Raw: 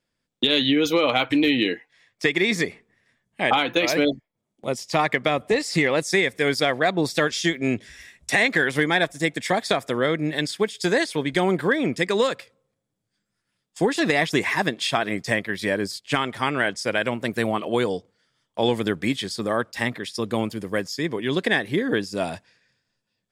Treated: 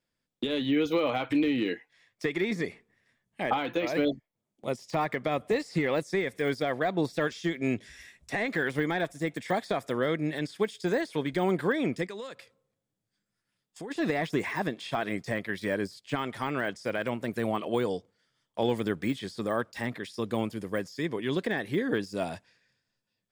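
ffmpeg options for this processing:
-filter_complex "[0:a]asplit=3[s0][s1][s2];[s0]afade=t=out:st=12.06:d=0.02[s3];[s1]acompressor=threshold=0.0126:ratio=2.5:attack=3.2:release=140:knee=1:detection=peak,afade=t=in:st=12.06:d=0.02,afade=t=out:st=13.9:d=0.02[s4];[s2]afade=t=in:st=13.9:d=0.02[s5];[s3][s4][s5]amix=inputs=3:normalize=0,deesser=0.95,volume=0.562"

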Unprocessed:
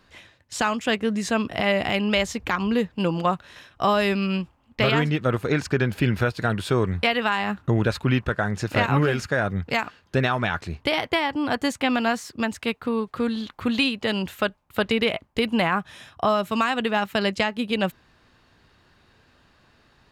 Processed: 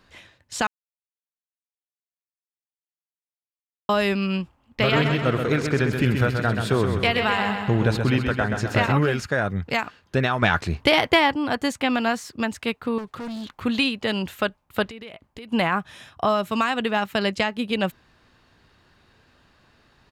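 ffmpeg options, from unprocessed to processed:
-filter_complex "[0:a]asplit=3[s0][s1][s2];[s0]afade=t=out:st=4.82:d=0.02[s3];[s1]aecho=1:1:129|258|387|516|645|774|903:0.501|0.286|0.163|0.0928|0.0529|0.0302|0.0172,afade=t=in:st=4.82:d=0.02,afade=t=out:st=8.91:d=0.02[s4];[s2]afade=t=in:st=8.91:d=0.02[s5];[s3][s4][s5]amix=inputs=3:normalize=0,asettb=1/sr,asplit=3[s6][s7][s8];[s6]atrim=end=10.424[s9];[s7]atrim=start=10.42:end=11.34,asetpts=PTS-STARTPTS,afade=t=in:d=0.004:c=qsin,afade=t=out:st=0.916:d=0.004:c=qsin,acontrast=54[s10];[s8]atrim=start=11.336[s11];[s9][s10]acrossfade=d=0.004:c1=hsin:c2=qsin[s12];[s12][s11]acrossfade=d=0.004:c1=qsin:c2=hsin,asettb=1/sr,asplit=3[s13][s14][s15];[s13]atrim=end=12.984[s16];[s14]atrim=start=12.98:end=13.63,asetpts=PTS-STARTPTS,afade=t=in:d=0.004:c=qsin,afade=t=out:st=0.646:d=0.004:c=qsin,asoftclip=type=hard:threshold=0.0316[s17];[s15]atrim=start=13.626[s18];[s16][s17]acrossfade=d=0.004:c1=hsin:c2=qsin[s19];[s19][s18]acrossfade=d=0.004:c1=qsin:c2=hsin,asettb=1/sr,asplit=3[s20][s21][s22];[s20]atrim=end=14.864[s23];[s21]atrim=start=14.86:end=15.52,asetpts=PTS-STARTPTS,afade=t=in:d=0.004:c=qsin,afade=t=out:st=0.656:d=0.004:c=qsin,acompressor=threshold=0.0112:ratio=4:attack=3.2:release=140:knee=1:detection=peak[s24];[s22]atrim=start=15.516[s25];[s23][s24]acrossfade=d=0.004:c1=hsin:c2=qsin[s26];[s26][s25]acrossfade=d=0.004:c1=qsin:c2=hsin,asplit=3[s27][s28][s29];[s27]atrim=end=0.67,asetpts=PTS-STARTPTS,afade=t=out:st=0.666:d=0.004:c=hsin[s30];[s28]atrim=start=0.67:end=3.89,asetpts=PTS-STARTPTS,volume=0[s31];[s29]atrim=start=3.89,asetpts=PTS-STARTPTS,afade=t=in:d=0.004:c=hsin[s32];[s30][s31][s32]concat=n=3:v=0:a=1"

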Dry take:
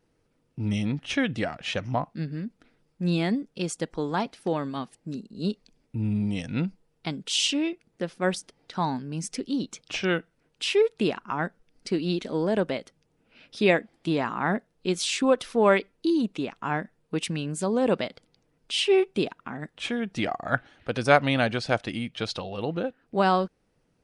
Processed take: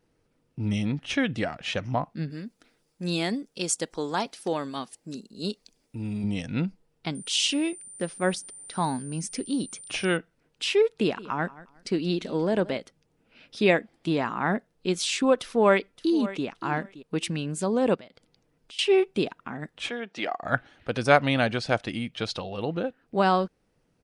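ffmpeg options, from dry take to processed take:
-filter_complex "[0:a]asettb=1/sr,asplit=3[s0][s1][s2];[s0]atrim=end=2.304[s3];[s1]atrim=start=2.3:end=6.24,asetpts=PTS-STARTPTS,afade=t=in:d=0.004:c=qsin,afade=t=out:st=3.936:d=0.004:c=qsin,bass=f=250:g=-7,treble=f=4000:g=10[s4];[s2]atrim=start=6.236[s5];[s3][s4]acrossfade=d=0.004:c1=hsin:c2=qsin[s6];[s6][s5]acrossfade=d=0.004:c1=qsin:c2=hsin,asettb=1/sr,asplit=3[s7][s8][s9];[s7]atrim=end=7.154[s10];[s8]atrim=start=7.15:end=10.17,asetpts=PTS-STARTPTS,afade=t=in:d=0.004:c=qsin,afade=t=out:st=3.016:d=0.004:c=qsin,aeval=exprs='val(0)+0.00794*sin(2*PI*9100*n/s)':c=same[s11];[s9]atrim=start=10.166[s12];[s10][s11]acrossfade=d=0.004:c1=hsin:c2=qsin[s13];[s13][s12]acrossfade=d=0.004:c1=qsin:c2=hsin,asettb=1/sr,asplit=3[s14][s15][s16];[s14]atrim=end=10.824[s17];[s15]atrim=start=10.82:end=12.77,asetpts=PTS-STARTPTS,afade=t=in:d=0.004:c=qsin,afade=t=out:st=1.946:d=0.004:c=qsin,aecho=1:1:179|358:0.112|0.0269,atrim=end_sample=85995[s18];[s16]atrim=start=12.766[s19];[s17][s18]acrossfade=d=0.004:c1=hsin:c2=qsin[s20];[s20][s19]acrossfade=d=0.004:c1=qsin:c2=hsin,asplit=2[s21][s22];[s22]afade=t=in:st=15.39:d=0.01,afade=t=out:st=16.45:d=0.01,aecho=0:1:570|1140:0.16788|0.0251821[s23];[s21][s23]amix=inputs=2:normalize=0,asettb=1/sr,asplit=3[s24][s25][s26];[s24]atrim=end=17.954[s27];[s25]atrim=start=17.95:end=18.79,asetpts=PTS-STARTPTS,afade=t=in:d=0.004:c=qsin,afade=t=out:st=0.836:d=0.004:c=qsin,acompressor=threshold=0.00282:ratio=2.5:attack=3.2:release=140:knee=1:detection=peak[s28];[s26]atrim=start=18.786[s29];[s27][s28]acrossfade=d=0.004:c1=hsin:c2=qsin[s30];[s30][s29]acrossfade=d=0.004:c1=qsin:c2=hsin,asplit=3[s31][s32][s33];[s31]afade=t=out:st=19.89:d=0.02[s34];[s32]highpass=390,lowpass=5600,afade=t=in:st=19.89:d=0.02,afade=t=out:st=20.42:d=0.02[s35];[s33]afade=t=in:st=20.42:d=0.02[s36];[s34][s35][s36]amix=inputs=3:normalize=0"

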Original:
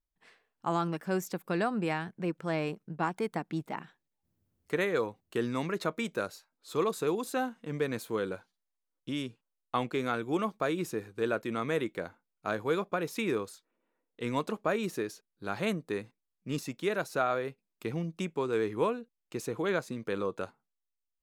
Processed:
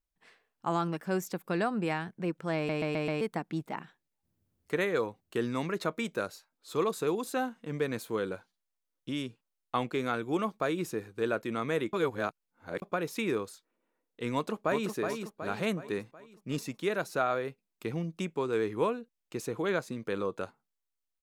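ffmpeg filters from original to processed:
-filter_complex "[0:a]asplit=2[s0][s1];[s1]afade=t=in:st=14.34:d=0.01,afade=t=out:st=14.92:d=0.01,aecho=0:1:370|740|1110|1480|1850|2220:0.530884|0.265442|0.132721|0.0663606|0.0331803|0.0165901[s2];[s0][s2]amix=inputs=2:normalize=0,asplit=8[s3][s4][s5][s6][s7][s8][s9][s10];[s3]atrim=end=2.692[s11];[s4]atrim=start=2.558:end=2.692[s12];[s5]atrim=start=2.558:end=2.692[s13];[s6]atrim=start=2.558:end=2.692[s14];[s7]atrim=start=2.558:end=2.692[s15];[s8]atrim=start=3.208:end=11.932[s16];[s9]atrim=start=11.928:end=12.822,asetpts=PTS-STARTPTS,areverse[s17];[s10]atrim=start=12.818[s18];[s11][s12]acrossfade=d=0.004:c1=hsin:c2=hsin[s19];[s19][s13]acrossfade=d=0.004:c1=hsin:c2=hsin[s20];[s20][s14]acrossfade=d=0.004:c1=hsin:c2=hsin[s21];[s21][s15]acrossfade=d=0.004:c1=hsin:c2=hsin[s22];[s22][s16]acrossfade=d=0.004:c1=hsin:c2=hsin[s23];[s23][s17]acrossfade=d=0.004:c1=hsin:c2=hsin[s24];[s24][s18]acrossfade=d=0.004:c1=hsin:c2=hsin"

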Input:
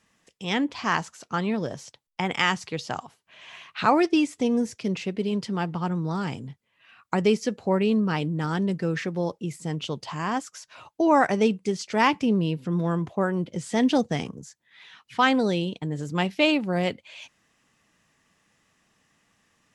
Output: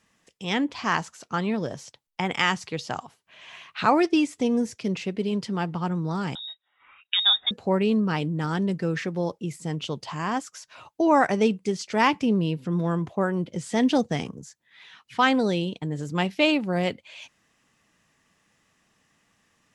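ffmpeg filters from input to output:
-filter_complex "[0:a]asettb=1/sr,asplit=3[s0][s1][s2];[s0]atrim=end=6.354[s3];[s1]atrim=start=6.35:end=7.51,asetpts=PTS-STARTPTS,afade=t=in:d=0.004:c=qsin,afade=t=out:st=1.156:d=0.004:c=qsin,lowpass=f=3300:t=q:w=0.5098,lowpass=f=3300:t=q:w=0.6013,lowpass=f=3300:t=q:w=0.9,lowpass=f=3300:t=q:w=2.563,afreqshift=-3900[s4];[s2]atrim=start=7.506[s5];[s3][s4]acrossfade=d=0.004:c1=hsin:c2=qsin[s6];[s6][s5]acrossfade=d=0.004:c1=qsin:c2=hsin"

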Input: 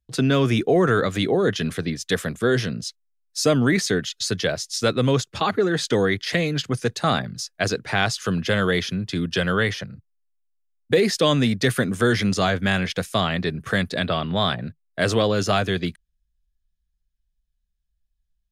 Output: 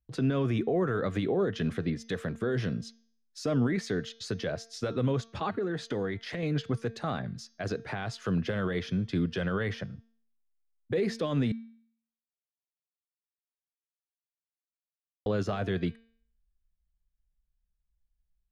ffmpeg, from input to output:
-filter_complex "[0:a]asettb=1/sr,asplit=3[s0][s1][s2];[s0]atrim=end=5.514[s3];[s1]atrim=start=5.51:end=6.43,asetpts=PTS-STARTPTS,afade=t=in:d=0.004:c=qsin,afade=t=out:st=0.916:d=0.004:c=qsin,acompressor=threshold=0.0631:ratio=6:attack=3.2:release=140:knee=1:detection=peak[s4];[s2]atrim=start=6.426[s5];[s3][s4]acrossfade=d=0.004:c1=hsin:c2=qsin[s6];[s6][s5]acrossfade=d=0.004:c1=qsin:c2=hsin,asplit=3[s7][s8][s9];[s7]atrim=end=11.52,asetpts=PTS-STARTPTS,afade=t=out:st=11.516:d=0.004:c=hsin[s10];[s8]atrim=start=11.52:end=15.26,asetpts=PTS-STARTPTS,volume=0[s11];[s9]atrim=start=15.26,asetpts=PTS-STARTPTS,afade=t=in:d=0.004:c=hsin[s12];[s10][s11][s12]concat=n=3:v=0:a=1,alimiter=limit=0.158:level=0:latency=1:release=87,lowpass=f=1300:p=1,bandreject=f=227.5:t=h:w=4,bandreject=f=455:t=h:w=4,bandreject=f=682.5:t=h:w=4,bandreject=f=910:t=h:w=4,bandreject=f=1137.5:t=h:w=4,bandreject=f=1365:t=h:w=4,bandreject=f=1592.5:t=h:w=4,bandreject=f=1820:t=h:w=4,bandreject=f=2047.5:t=h:w=4,bandreject=f=2275:t=h:w=4,bandreject=f=2502.5:t=h:w=4,bandreject=f=2730:t=h:w=4,bandreject=f=2957.5:t=h:w=4,bandreject=f=3185:t=h:w=4,bandreject=f=3412.5:t=h:w=4,bandreject=f=3640:t=h:w=4,bandreject=f=3867.5:t=h:w=4,bandreject=f=4095:t=h:w=4,bandreject=f=4322.5:t=h:w=4,bandreject=f=4550:t=h:w=4,bandreject=f=4777.5:t=h:w=4,bandreject=f=5005:t=h:w=4,bandreject=f=5232.5:t=h:w=4,bandreject=f=5460:t=h:w=4,bandreject=f=5687.5:t=h:w=4,bandreject=f=5915:t=h:w=4,bandreject=f=6142.5:t=h:w=4,bandreject=f=6370:t=h:w=4,bandreject=f=6597.5:t=h:w=4,volume=0.708"

